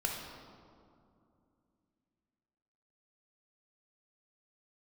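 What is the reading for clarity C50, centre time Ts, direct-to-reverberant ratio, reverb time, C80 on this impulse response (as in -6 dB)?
2.0 dB, 79 ms, -0.5 dB, 2.5 s, 4.0 dB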